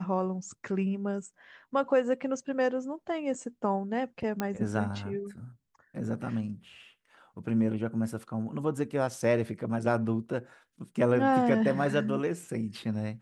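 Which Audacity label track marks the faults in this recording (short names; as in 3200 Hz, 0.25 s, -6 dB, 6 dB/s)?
4.400000	4.400000	pop -16 dBFS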